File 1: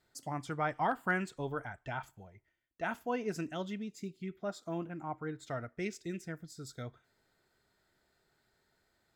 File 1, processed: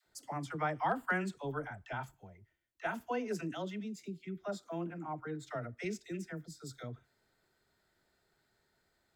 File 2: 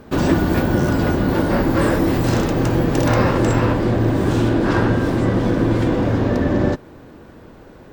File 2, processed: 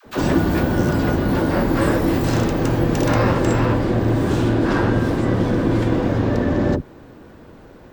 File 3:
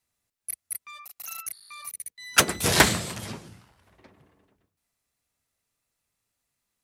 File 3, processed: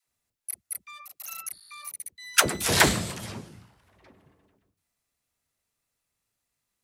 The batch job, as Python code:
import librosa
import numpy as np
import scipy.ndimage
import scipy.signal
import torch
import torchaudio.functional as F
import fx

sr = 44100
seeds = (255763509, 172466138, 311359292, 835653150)

y = fx.dispersion(x, sr, late='lows', ms=63.0, hz=480.0)
y = y * 10.0 ** (-1.0 / 20.0)